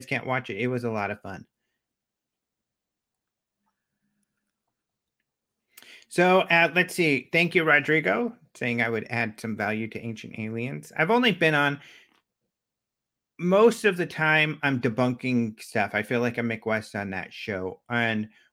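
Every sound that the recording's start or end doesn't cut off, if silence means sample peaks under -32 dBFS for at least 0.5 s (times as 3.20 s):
5.78–11.75 s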